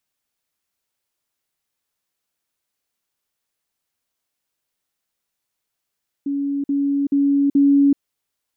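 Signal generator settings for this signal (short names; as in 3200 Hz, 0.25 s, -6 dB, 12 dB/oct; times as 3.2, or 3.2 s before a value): level ladder 281 Hz -19.5 dBFS, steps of 3 dB, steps 4, 0.38 s 0.05 s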